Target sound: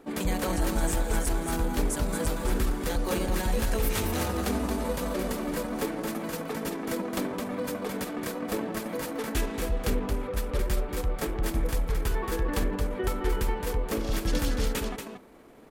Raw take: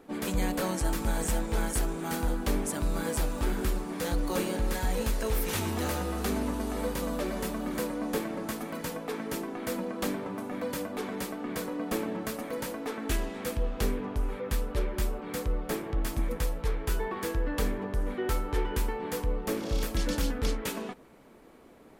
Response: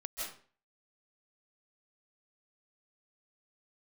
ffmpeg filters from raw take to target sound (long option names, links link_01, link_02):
-af "aecho=1:1:315:0.501,atempo=1.4,volume=1.5dB"